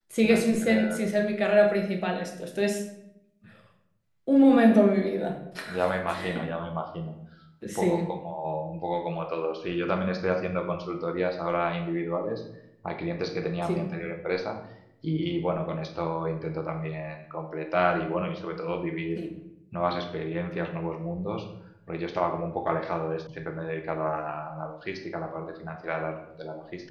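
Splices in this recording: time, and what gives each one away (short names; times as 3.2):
23.27 sound cut off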